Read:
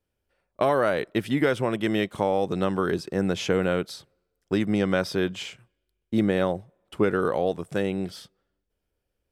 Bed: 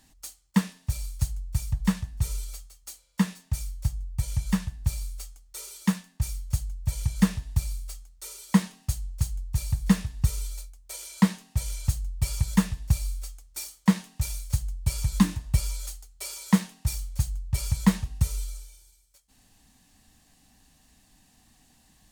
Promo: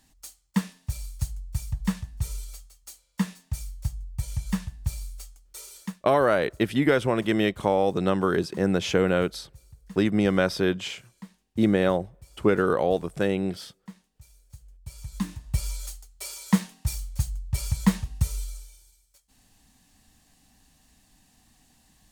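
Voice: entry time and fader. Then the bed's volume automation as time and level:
5.45 s, +1.5 dB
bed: 5.8 s -2.5 dB
6.02 s -23.5 dB
14.41 s -23.5 dB
15.7 s -0.5 dB

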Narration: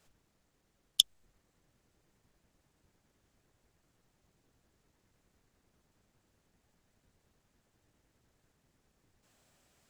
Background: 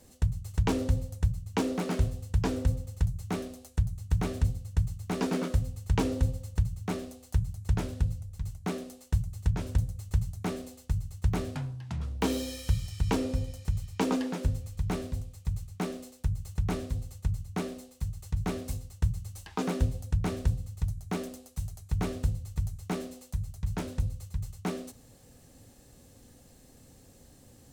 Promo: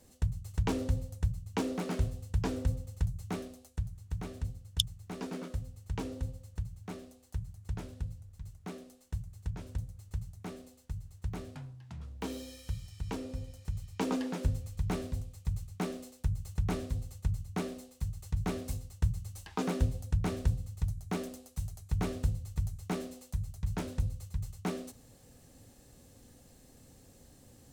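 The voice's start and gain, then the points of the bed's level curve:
3.80 s, -5.0 dB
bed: 3.3 s -4 dB
4.07 s -10 dB
13.23 s -10 dB
14.42 s -2 dB

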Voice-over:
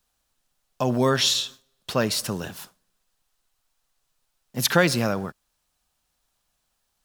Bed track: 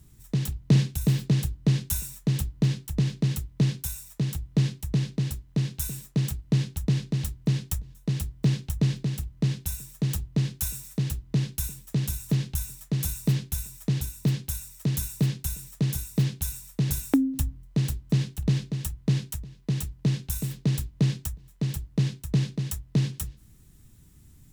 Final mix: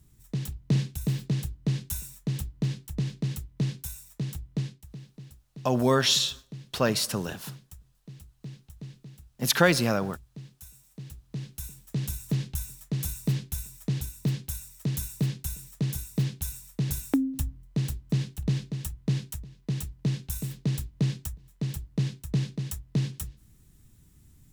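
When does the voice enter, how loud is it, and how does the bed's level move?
4.85 s, -1.5 dB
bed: 4.51 s -5 dB
4.97 s -18.5 dB
10.7 s -18.5 dB
12.06 s -3 dB

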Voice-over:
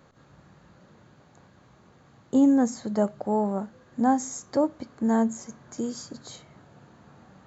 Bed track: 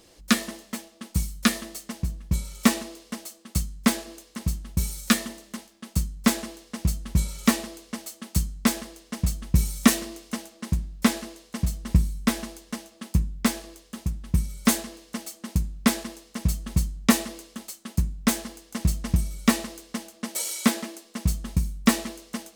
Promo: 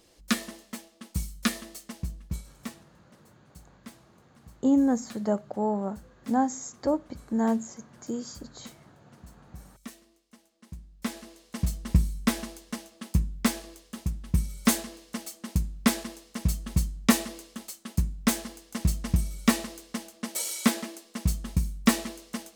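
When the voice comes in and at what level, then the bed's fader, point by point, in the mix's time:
2.30 s, -2.5 dB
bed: 2.23 s -5.5 dB
2.85 s -25.5 dB
10.26 s -25.5 dB
11.64 s -2 dB

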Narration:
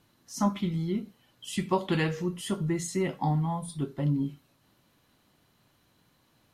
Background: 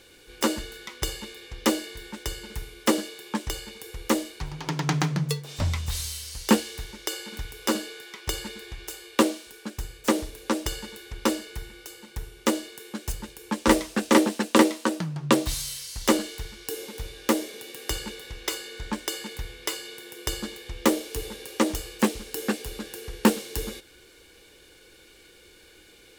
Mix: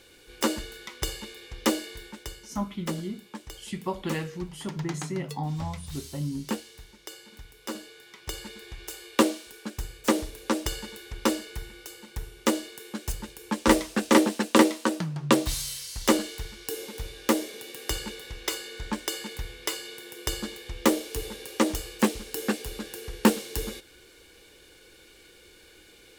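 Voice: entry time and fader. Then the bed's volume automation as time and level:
2.15 s, -4.5 dB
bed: 1.97 s -1.5 dB
2.53 s -11.5 dB
7.57 s -11.5 dB
9.03 s -0.5 dB

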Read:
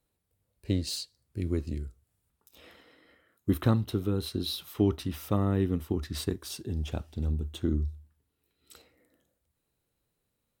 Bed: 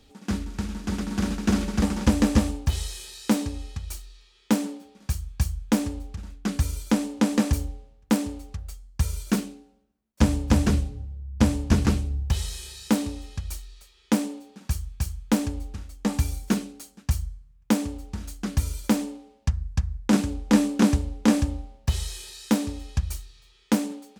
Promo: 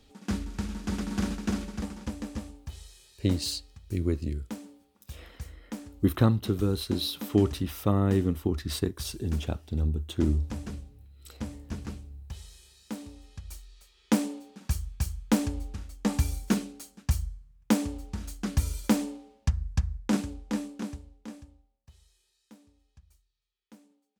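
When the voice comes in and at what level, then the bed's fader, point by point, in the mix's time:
2.55 s, +2.5 dB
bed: 1.2 s -3 dB
2.17 s -16.5 dB
12.84 s -16.5 dB
14.12 s -2 dB
19.85 s -2 dB
21.84 s -31.5 dB

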